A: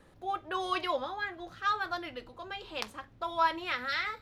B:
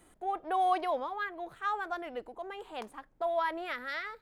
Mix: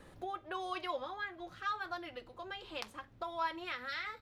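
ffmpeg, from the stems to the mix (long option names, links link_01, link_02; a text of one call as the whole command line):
ffmpeg -i stem1.wav -i stem2.wav -filter_complex "[0:a]volume=3dB[link_01];[1:a]equalizer=frequency=2800:width_type=o:width=1.7:gain=12.5,acompressor=threshold=-33dB:ratio=4,adelay=9.1,volume=-14dB,asplit=2[link_02][link_03];[link_03]apad=whole_len=186040[link_04];[link_01][link_04]sidechaincompress=threshold=-58dB:ratio=5:attack=43:release=676[link_05];[link_05][link_02]amix=inputs=2:normalize=0" out.wav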